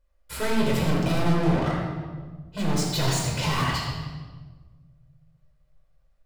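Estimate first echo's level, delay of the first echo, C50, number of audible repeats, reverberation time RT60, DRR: none, none, 0.5 dB, none, 1.4 s, -4.0 dB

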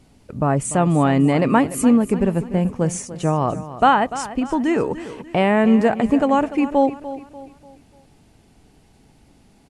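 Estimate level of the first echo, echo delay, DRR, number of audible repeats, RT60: -14.0 dB, 0.294 s, none, 3, none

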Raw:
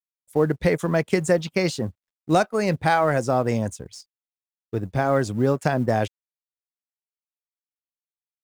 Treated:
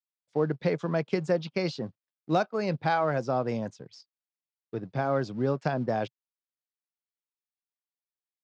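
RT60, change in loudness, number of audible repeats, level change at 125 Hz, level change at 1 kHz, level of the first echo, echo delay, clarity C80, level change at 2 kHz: none, -6.5 dB, none, -7.0 dB, -6.0 dB, none, none, none, -8.0 dB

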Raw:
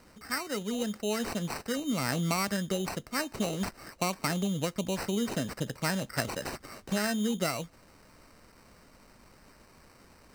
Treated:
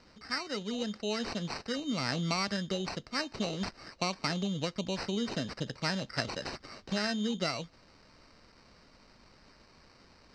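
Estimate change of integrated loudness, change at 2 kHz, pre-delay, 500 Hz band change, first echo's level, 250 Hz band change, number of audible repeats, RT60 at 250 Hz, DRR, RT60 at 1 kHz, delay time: -2.0 dB, -2.0 dB, none, -3.0 dB, none, -3.0 dB, none, none, none, none, none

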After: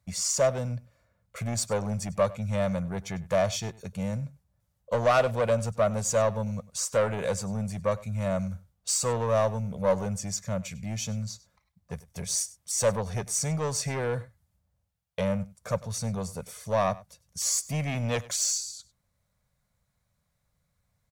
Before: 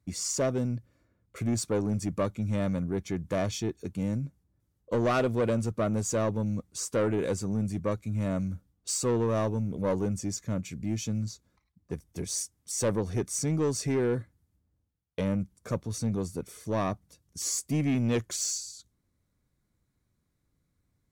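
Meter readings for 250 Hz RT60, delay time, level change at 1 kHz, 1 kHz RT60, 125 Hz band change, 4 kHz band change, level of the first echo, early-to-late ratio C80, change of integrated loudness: none, 98 ms, +5.0 dB, none, 0.0 dB, +4.0 dB, -20.0 dB, none, +1.5 dB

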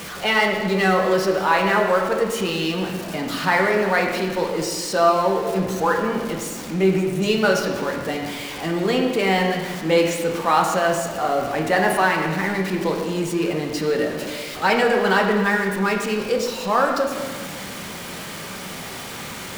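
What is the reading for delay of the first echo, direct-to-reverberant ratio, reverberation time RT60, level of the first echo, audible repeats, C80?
none, 0.5 dB, 1.6 s, none, none, 5.5 dB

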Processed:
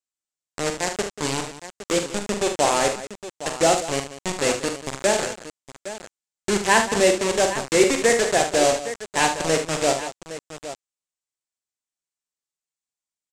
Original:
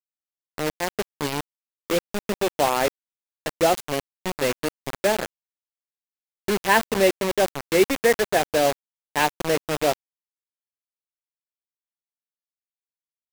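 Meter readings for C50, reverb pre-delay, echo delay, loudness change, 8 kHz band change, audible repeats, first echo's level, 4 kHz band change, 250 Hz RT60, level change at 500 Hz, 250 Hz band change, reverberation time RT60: none, none, 44 ms, +2.0 dB, +8.0 dB, 4, -7.5 dB, +3.5 dB, none, +1.5 dB, +1.5 dB, none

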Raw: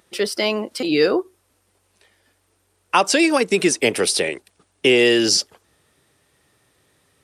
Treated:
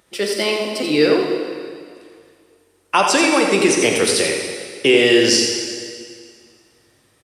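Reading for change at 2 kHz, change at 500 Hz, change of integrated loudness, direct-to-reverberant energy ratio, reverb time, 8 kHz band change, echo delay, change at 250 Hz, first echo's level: +2.5 dB, +2.5 dB, +2.0 dB, 0.5 dB, 2.1 s, +2.5 dB, 87 ms, +2.5 dB, -7.5 dB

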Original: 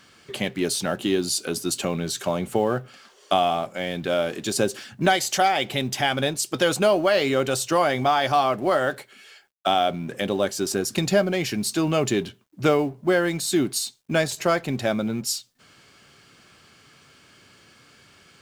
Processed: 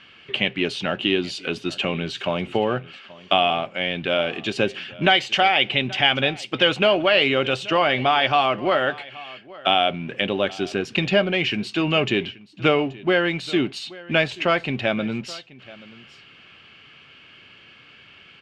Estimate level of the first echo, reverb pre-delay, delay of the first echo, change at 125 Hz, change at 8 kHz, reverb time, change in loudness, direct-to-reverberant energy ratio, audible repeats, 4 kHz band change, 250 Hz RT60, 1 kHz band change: -20.5 dB, none, 0.829 s, 0.0 dB, -16.0 dB, none, +2.0 dB, none, 1, +6.0 dB, none, +1.0 dB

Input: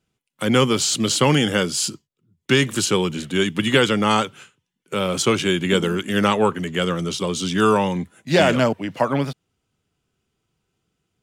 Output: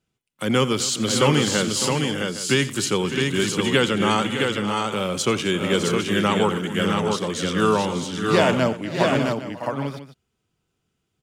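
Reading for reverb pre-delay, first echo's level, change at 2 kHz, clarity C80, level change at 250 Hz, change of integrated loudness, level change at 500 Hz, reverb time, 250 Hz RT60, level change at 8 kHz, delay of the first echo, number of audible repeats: none, -16.5 dB, -1.0 dB, none, -1.0 dB, -1.5 dB, -1.0 dB, none, none, -1.0 dB, 87 ms, 6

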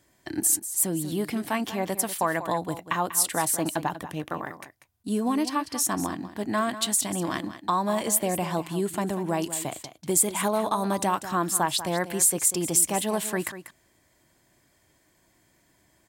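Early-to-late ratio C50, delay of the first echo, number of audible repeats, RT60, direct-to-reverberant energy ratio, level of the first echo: none, 0.192 s, 1, none, none, -12.5 dB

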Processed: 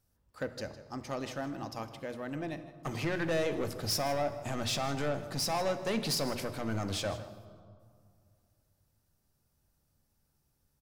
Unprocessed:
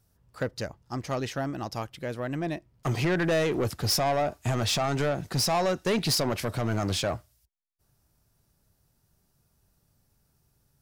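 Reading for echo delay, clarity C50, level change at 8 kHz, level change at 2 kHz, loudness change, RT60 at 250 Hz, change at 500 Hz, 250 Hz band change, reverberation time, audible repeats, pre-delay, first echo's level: 0.157 s, 11.0 dB, -6.0 dB, -6.0 dB, -6.5 dB, 2.4 s, -6.0 dB, -6.0 dB, 2.2 s, 1, 3 ms, -15.5 dB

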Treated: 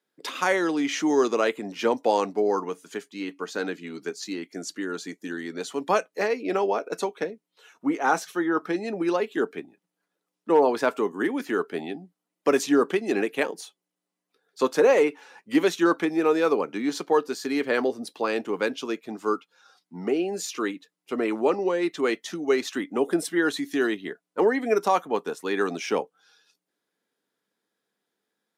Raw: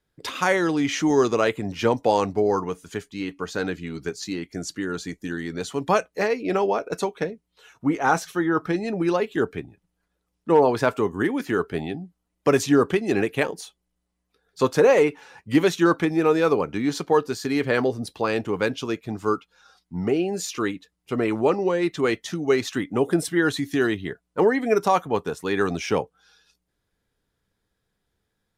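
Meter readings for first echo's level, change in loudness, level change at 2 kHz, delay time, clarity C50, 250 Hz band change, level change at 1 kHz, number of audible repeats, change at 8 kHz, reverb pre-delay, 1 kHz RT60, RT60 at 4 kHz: none, -2.5 dB, -2.0 dB, none, none, -3.0 dB, -2.0 dB, none, -2.0 dB, none, none, none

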